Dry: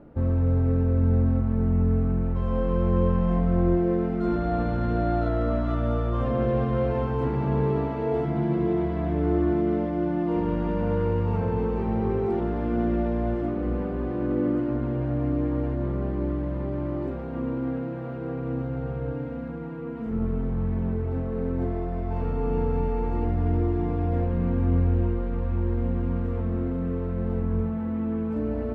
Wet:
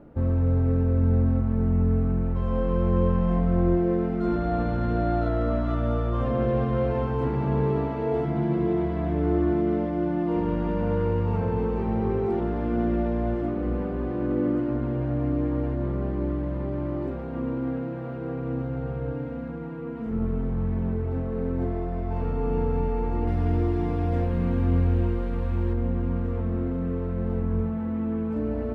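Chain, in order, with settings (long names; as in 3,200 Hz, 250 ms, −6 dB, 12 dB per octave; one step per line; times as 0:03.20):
0:23.27–0:25.73: high-shelf EQ 2,900 Hz +11.5 dB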